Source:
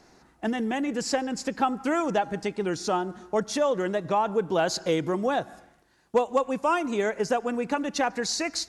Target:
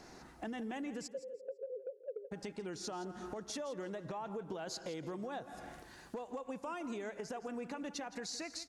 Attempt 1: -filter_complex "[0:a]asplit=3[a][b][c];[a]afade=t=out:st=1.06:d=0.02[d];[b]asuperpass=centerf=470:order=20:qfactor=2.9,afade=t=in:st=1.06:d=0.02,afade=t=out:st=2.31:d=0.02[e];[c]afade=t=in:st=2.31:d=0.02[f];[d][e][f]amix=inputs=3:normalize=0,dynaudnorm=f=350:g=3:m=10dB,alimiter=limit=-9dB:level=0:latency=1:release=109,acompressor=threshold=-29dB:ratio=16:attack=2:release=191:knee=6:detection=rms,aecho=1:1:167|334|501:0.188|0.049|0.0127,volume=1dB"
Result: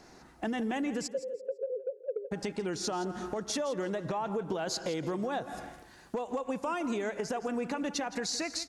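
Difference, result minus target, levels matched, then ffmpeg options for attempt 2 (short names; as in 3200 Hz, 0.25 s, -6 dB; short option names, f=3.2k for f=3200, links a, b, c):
compressor: peak gain reduction -9 dB
-filter_complex "[0:a]asplit=3[a][b][c];[a]afade=t=out:st=1.06:d=0.02[d];[b]asuperpass=centerf=470:order=20:qfactor=2.9,afade=t=in:st=1.06:d=0.02,afade=t=out:st=2.31:d=0.02[e];[c]afade=t=in:st=2.31:d=0.02[f];[d][e][f]amix=inputs=3:normalize=0,dynaudnorm=f=350:g=3:m=10dB,alimiter=limit=-9dB:level=0:latency=1:release=109,acompressor=threshold=-38.5dB:ratio=16:attack=2:release=191:knee=6:detection=rms,aecho=1:1:167|334|501:0.188|0.049|0.0127,volume=1dB"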